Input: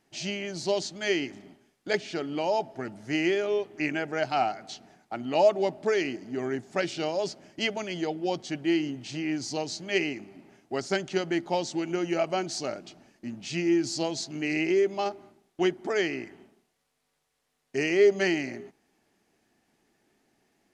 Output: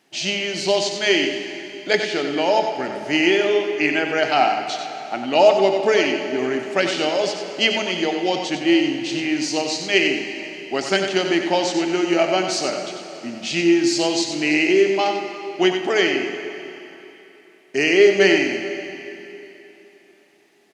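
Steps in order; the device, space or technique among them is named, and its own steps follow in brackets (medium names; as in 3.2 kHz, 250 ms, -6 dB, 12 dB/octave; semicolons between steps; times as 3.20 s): PA in a hall (high-pass 200 Hz 12 dB/octave; peaking EQ 3.1 kHz +5 dB 1.1 oct; delay 93 ms -7.5 dB; reverberation RT60 3.4 s, pre-delay 18 ms, DRR 6.5 dB); trim +7.5 dB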